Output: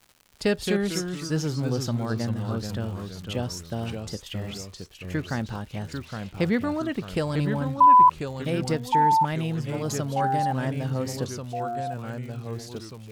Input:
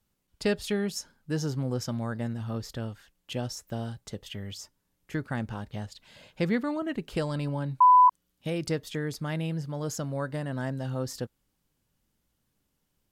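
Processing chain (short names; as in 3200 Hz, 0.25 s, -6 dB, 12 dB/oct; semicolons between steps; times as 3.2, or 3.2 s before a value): echoes that change speed 0.164 s, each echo -2 st, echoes 3, each echo -6 dB; crackle 180/s -43 dBFS; gain +3 dB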